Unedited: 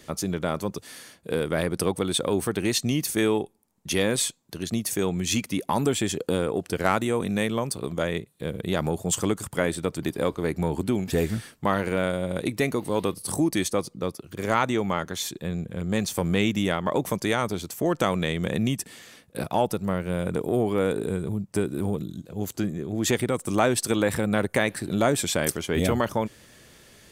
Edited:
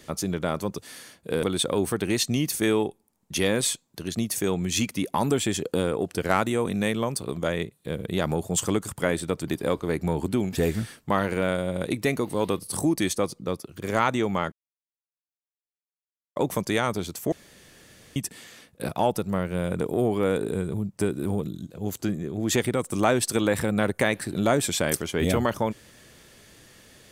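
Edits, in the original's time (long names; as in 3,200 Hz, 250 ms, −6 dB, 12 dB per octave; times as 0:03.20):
0:01.43–0:01.98: remove
0:15.07–0:16.91: silence
0:17.87–0:18.71: fill with room tone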